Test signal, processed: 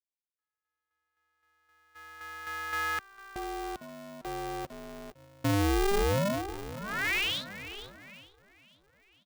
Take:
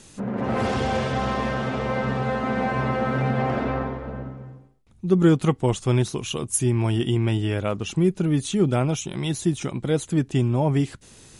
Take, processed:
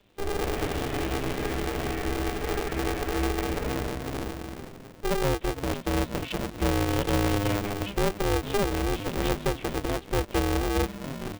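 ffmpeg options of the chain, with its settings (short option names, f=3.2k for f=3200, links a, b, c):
-filter_complex "[0:a]aresample=8000,aresample=44100,asplit=8[a][b][c][d][e][f][g][h];[b]adelay=452,afreqshift=-110,volume=-15dB[i];[c]adelay=904,afreqshift=-220,volume=-19.2dB[j];[d]adelay=1356,afreqshift=-330,volume=-23.3dB[k];[e]adelay=1808,afreqshift=-440,volume=-27.5dB[l];[f]adelay=2260,afreqshift=-550,volume=-31.6dB[m];[g]adelay=2712,afreqshift=-660,volume=-35.8dB[n];[h]adelay=3164,afreqshift=-770,volume=-39.9dB[o];[a][i][j][k][l][m][n][o]amix=inputs=8:normalize=0,acrossover=split=180|1100|3100[p][q][r][s];[s]acompressor=threshold=-56dB:ratio=6[t];[p][q][r][t]amix=inputs=4:normalize=0,agate=range=-11dB:threshold=-42dB:ratio=16:detection=peak,alimiter=limit=-16dB:level=0:latency=1:release=296,asuperstop=centerf=890:order=4:qfactor=0.57,aeval=exprs='val(0)*sgn(sin(2*PI*200*n/s))':c=same"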